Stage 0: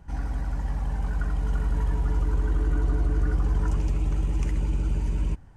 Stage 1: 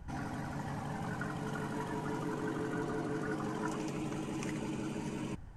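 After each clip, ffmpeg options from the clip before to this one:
ffmpeg -i in.wav -af "afftfilt=real='re*lt(hypot(re,im),0.178)':imag='im*lt(hypot(re,im),0.178)':win_size=1024:overlap=0.75" out.wav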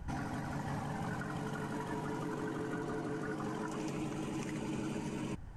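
ffmpeg -i in.wav -af "alimiter=level_in=9dB:limit=-24dB:level=0:latency=1:release=276,volume=-9dB,volume=3.5dB" out.wav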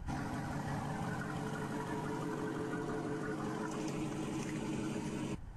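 ffmpeg -i in.wav -ar 48000 -c:a libvorbis -b:a 32k out.ogg

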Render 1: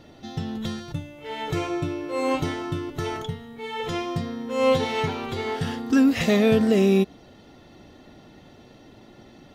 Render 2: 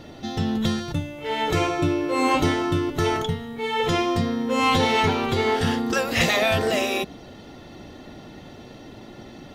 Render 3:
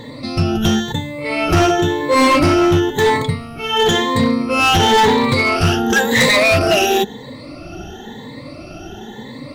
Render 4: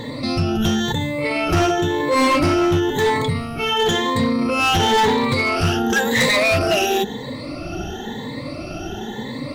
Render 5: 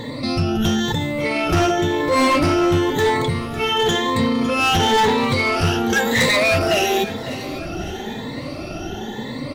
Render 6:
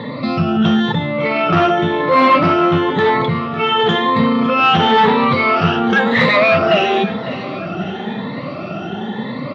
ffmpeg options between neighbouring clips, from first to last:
ffmpeg -i in.wav -af "afftfilt=real='re*lt(hypot(re,im),0.501)':imag='im*lt(hypot(re,im),0.501)':win_size=1024:overlap=0.75,volume=7dB" out.wav
ffmpeg -i in.wav -af "afftfilt=real='re*pow(10,20/40*sin(2*PI*(1*log(max(b,1)*sr/1024/100)/log(2)-(0.97)*(pts-256)/sr)))':imag='im*pow(10,20/40*sin(2*PI*(1*log(max(b,1)*sr/1024/100)/log(2)-(0.97)*(pts-256)/sr)))':win_size=1024:overlap=0.75,volume=14.5dB,asoftclip=hard,volume=-14.5dB,volume=5.5dB" out.wav
ffmpeg -i in.wav -af "alimiter=limit=-16.5dB:level=0:latency=1:release=20,volume=3.5dB" out.wav
ffmpeg -i in.wav -af "aecho=1:1:553|1106|1659|2212:0.178|0.0836|0.0393|0.0185" out.wav
ffmpeg -i in.wav -af "highpass=frequency=120:width=0.5412,highpass=frequency=120:width=1.3066,equalizer=frequency=190:width_type=q:width=4:gain=10,equalizer=frequency=300:width_type=q:width=4:gain=-5,equalizer=frequency=630:width_type=q:width=4:gain=3,equalizer=frequency=1200:width_type=q:width=4:gain=9,lowpass=frequency=3600:width=0.5412,lowpass=frequency=3600:width=1.3066,volume=3dB" out.wav

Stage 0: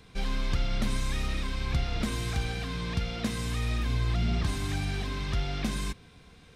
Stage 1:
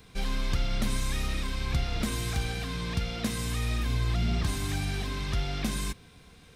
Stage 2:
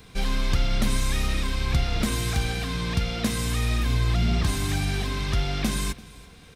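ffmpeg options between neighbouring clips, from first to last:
ffmpeg -i in.wav -af "highshelf=frequency=9300:gain=10.5" out.wav
ffmpeg -i in.wav -af "aecho=1:1:339:0.0841,volume=5dB" out.wav

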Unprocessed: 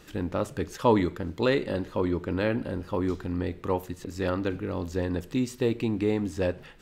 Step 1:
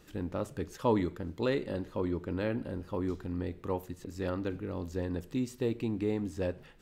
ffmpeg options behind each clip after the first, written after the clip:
ffmpeg -i in.wav -af "equalizer=frequency=2400:width=0.3:gain=-3.5,volume=-5dB" out.wav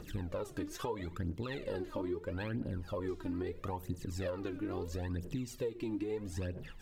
ffmpeg -i in.wav -af "alimiter=level_in=3dB:limit=-24dB:level=0:latency=1:release=294,volume=-3dB,aphaser=in_gain=1:out_gain=1:delay=3.5:decay=0.73:speed=0.76:type=triangular,acompressor=threshold=-36dB:ratio=6,volume=2dB" out.wav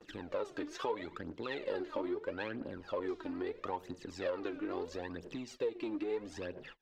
ffmpeg -i in.wav -filter_complex "[0:a]aeval=exprs='0.0531*(cos(1*acos(clip(val(0)/0.0531,-1,1)))-cos(1*PI/2))+0.0015*(cos(8*acos(clip(val(0)/0.0531,-1,1)))-cos(8*PI/2))':channel_layout=same,acrossover=split=280 5800:gain=0.112 1 0.0794[link_01][link_02][link_03];[link_01][link_02][link_03]amix=inputs=3:normalize=0,agate=range=-29dB:threshold=-55dB:ratio=16:detection=peak,volume=3dB" out.wav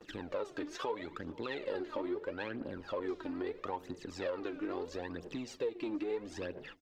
ffmpeg -i in.wav -filter_complex "[0:a]asplit=2[link_01][link_02];[link_02]alimiter=level_in=9dB:limit=-24dB:level=0:latency=1:release=413,volume=-9dB,volume=2dB[link_03];[link_01][link_03]amix=inputs=2:normalize=0,asplit=2[link_04][link_05];[link_05]adelay=478.1,volume=-21dB,highshelf=frequency=4000:gain=-10.8[link_06];[link_04][link_06]amix=inputs=2:normalize=0,volume=-4.5dB" out.wav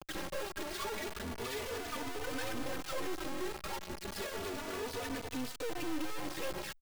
ffmpeg -i in.wav -filter_complex "[0:a]aresample=11025,asoftclip=type=tanh:threshold=-38.5dB,aresample=44100,acrusher=bits=5:dc=4:mix=0:aa=0.000001,asplit=2[link_01][link_02];[link_02]adelay=3.3,afreqshift=0.31[link_03];[link_01][link_03]amix=inputs=2:normalize=1,volume=12.5dB" out.wav

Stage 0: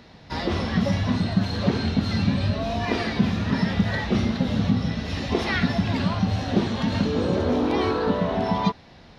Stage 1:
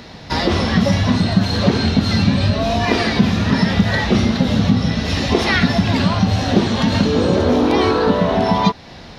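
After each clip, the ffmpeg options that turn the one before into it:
ffmpeg -i in.wav -filter_complex "[0:a]bass=frequency=250:gain=-1,treble=frequency=4000:gain=4,asplit=2[link_01][link_02];[link_02]acompressor=threshold=-29dB:ratio=6,volume=1dB[link_03];[link_01][link_03]amix=inputs=2:normalize=0,volume=5dB" out.wav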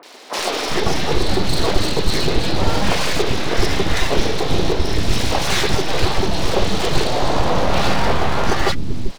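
ffmpeg -i in.wav -filter_complex "[0:a]aeval=exprs='abs(val(0))':channel_layout=same,acrossover=split=290|1500[link_01][link_02][link_03];[link_03]adelay=30[link_04];[link_01]adelay=390[link_05];[link_05][link_02][link_04]amix=inputs=3:normalize=0,volume=2dB" out.wav

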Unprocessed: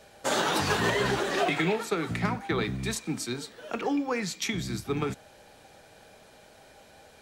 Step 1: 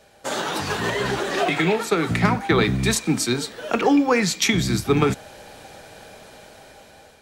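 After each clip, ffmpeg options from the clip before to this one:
ffmpeg -i in.wav -af "dynaudnorm=framelen=710:gausssize=5:maxgain=11.5dB" out.wav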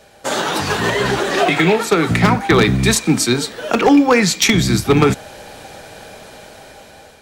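ffmpeg -i in.wav -af "aeval=exprs='0.299*(abs(mod(val(0)/0.299+3,4)-2)-1)':channel_layout=same,volume=6.5dB" out.wav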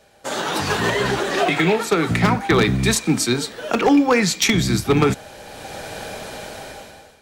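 ffmpeg -i in.wav -af "dynaudnorm=framelen=110:gausssize=9:maxgain=12dB,volume=-7dB" out.wav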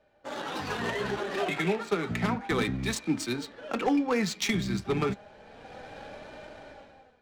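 ffmpeg -i in.wav -af "flanger=delay=3.3:depth=1.8:regen=54:speed=0.31:shape=sinusoidal,adynamicsmooth=sensitivity=4:basefreq=2600,volume=-7dB" out.wav

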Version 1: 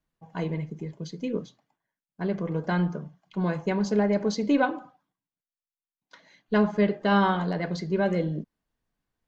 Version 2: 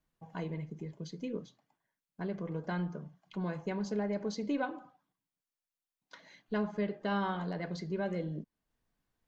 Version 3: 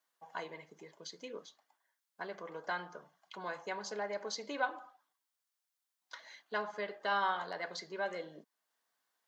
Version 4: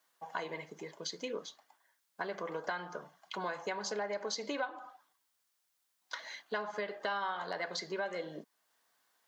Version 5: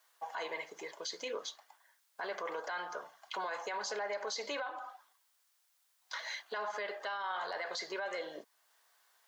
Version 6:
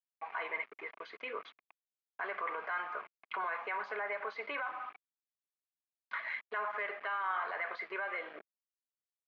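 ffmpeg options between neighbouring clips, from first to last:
ffmpeg -i in.wav -af "acompressor=threshold=-50dB:ratio=1.5" out.wav
ffmpeg -i in.wav -af "highpass=790,equalizer=frequency=2500:width=3.1:gain=-5,volume=5.5dB" out.wav
ffmpeg -i in.wav -af "acompressor=threshold=-42dB:ratio=5,volume=8dB" out.wav
ffmpeg -i in.wav -af "highpass=550,alimiter=level_in=11dB:limit=-24dB:level=0:latency=1:release=12,volume=-11dB,volume=5dB" out.wav
ffmpeg -i in.wav -af "aeval=exprs='val(0)*gte(abs(val(0)),0.00422)':channel_layout=same,highpass=310,equalizer=frequency=330:width_type=q:width=4:gain=-4,equalizer=frequency=530:width_type=q:width=4:gain=-8,equalizer=frequency=850:width_type=q:width=4:gain=-5,equalizer=frequency=1200:width_type=q:width=4:gain=6,equalizer=frequency=2300:width_type=q:width=4:gain=7,lowpass=frequency=2400:width=0.5412,lowpass=frequency=2400:width=1.3066,volume=2dB" out.wav

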